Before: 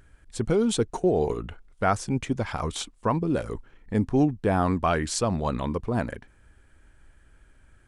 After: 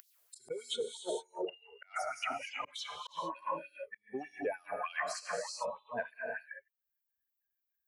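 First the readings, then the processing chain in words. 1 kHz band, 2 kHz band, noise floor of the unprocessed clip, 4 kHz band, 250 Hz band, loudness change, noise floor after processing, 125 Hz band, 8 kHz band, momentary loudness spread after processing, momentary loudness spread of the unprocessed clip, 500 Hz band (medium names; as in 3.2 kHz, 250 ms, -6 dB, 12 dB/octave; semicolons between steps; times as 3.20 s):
-10.0 dB, -4.5 dB, -58 dBFS, -5.0 dB, -24.0 dB, -13.5 dB, under -85 dBFS, -36.0 dB, -11.0 dB, 9 LU, 11 LU, -12.5 dB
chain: expander on every frequency bin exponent 3; dynamic bell 270 Hz, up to -5 dB, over -38 dBFS, Q 1; gated-style reverb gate 470 ms flat, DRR 5 dB; reverse; compression 6:1, threshold -39 dBFS, peak gain reduction 15.5 dB; reverse; slow attack 503 ms; LFO high-pass sine 3.3 Hz 450–4800 Hz; three bands compressed up and down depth 100%; trim +6.5 dB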